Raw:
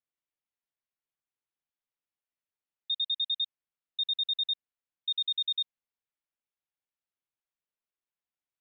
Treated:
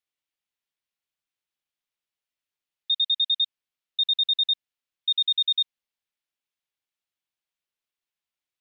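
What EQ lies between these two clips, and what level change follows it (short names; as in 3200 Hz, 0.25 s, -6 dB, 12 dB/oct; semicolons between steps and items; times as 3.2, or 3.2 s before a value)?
bell 3300 Hz +7.5 dB 1.7 oct; 0.0 dB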